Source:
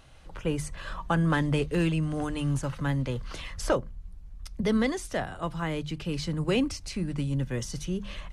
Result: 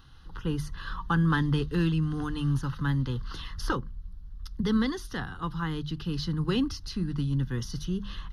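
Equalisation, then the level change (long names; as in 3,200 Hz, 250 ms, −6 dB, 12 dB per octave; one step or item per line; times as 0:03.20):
phaser with its sweep stopped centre 2,300 Hz, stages 6
+2.0 dB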